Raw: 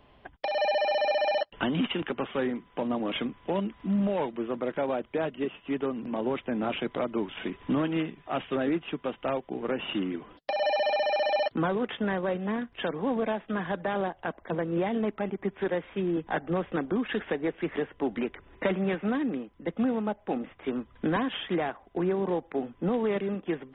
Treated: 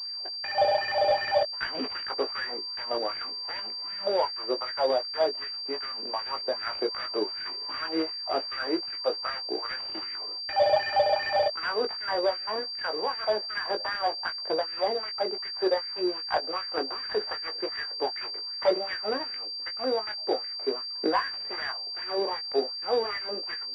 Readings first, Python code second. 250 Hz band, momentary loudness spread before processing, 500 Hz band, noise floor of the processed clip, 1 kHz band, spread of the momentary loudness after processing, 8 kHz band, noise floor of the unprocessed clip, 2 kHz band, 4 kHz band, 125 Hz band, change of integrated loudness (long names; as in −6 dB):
−9.5 dB, 7 LU, +1.0 dB, −36 dBFS, +2.5 dB, 7 LU, can't be measured, −60 dBFS, +1.5 dB, +11.0 dB, below −15 dB, +1.5 dB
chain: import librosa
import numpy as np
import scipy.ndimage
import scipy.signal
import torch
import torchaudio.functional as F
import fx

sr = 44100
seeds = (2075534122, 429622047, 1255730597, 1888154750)

y = fx.dead_time(x, sr, dead_ms=0.16)
y = fx.low_shelf(y, sr, hz=260.0, db=-11.5)
y = fx.filter_lfo_highpass(y, sr, shape='sine', hz=2.6, low_hz=390.0, high_hz=1800.0, q=3.0)
y = fx.doubler(y, sr, ms=19.0, db=-6.5)
y = fx.pwm(y, sr, carrier_hz=4700.0)